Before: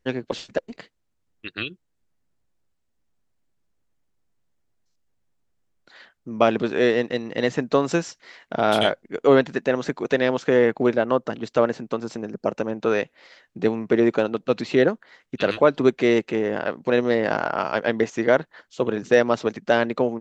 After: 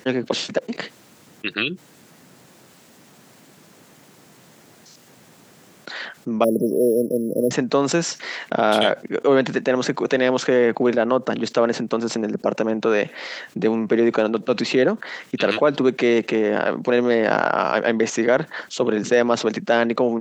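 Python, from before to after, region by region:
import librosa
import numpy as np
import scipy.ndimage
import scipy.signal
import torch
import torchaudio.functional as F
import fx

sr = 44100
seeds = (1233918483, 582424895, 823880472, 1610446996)

y = fx.chain(x, sr, fx.brickwall_bandstop(low_hz=650.0, high_hz=5100.0),
    fx.resample_bad(factor=4, down='filtered', up='hold'), at=(6.44, 7.51))
y = scipy.signal.sosfilt(scipy.signal.butter(4, 140.0, 'highpass', fs=sr, output='sos'), y)
y = fx.env_flatten(y, sr, amount_pct=50)
y = y * 10.0 ** (-1.5 / 20.0)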